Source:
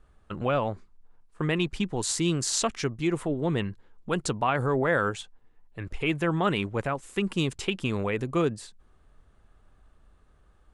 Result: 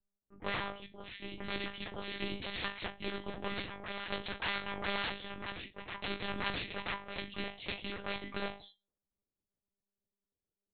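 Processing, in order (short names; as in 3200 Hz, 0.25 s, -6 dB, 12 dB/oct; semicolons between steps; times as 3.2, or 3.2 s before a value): self-modulated delay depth 0.87 ms; HPF 140 Hz 6 dB/oct; de-hum 186.6 Hz, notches 7; low-pass opened by the level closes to 440 Hz, open at -26.5 dBFS; spectral noise reduction 30 dB; resonator bank E3 fifth, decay 0.23 s; on a send: reverse echo 0.984 s -12.5 dB; on the sum: monotone LPC vocoder at 8 kHz 200 Hz; spectral compressor 2:1; gain +5 dB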